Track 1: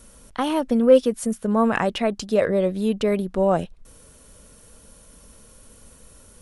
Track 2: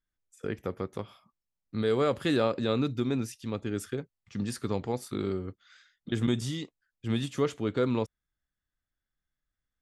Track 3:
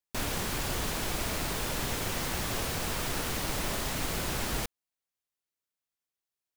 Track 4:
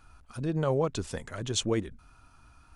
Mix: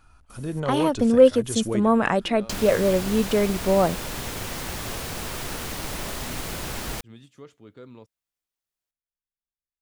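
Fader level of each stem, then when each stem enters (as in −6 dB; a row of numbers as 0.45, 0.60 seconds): 0.0, −17.5, +0.5, 0.0 decibels; 0.30, 0.00, 2.35, 0.00 seconds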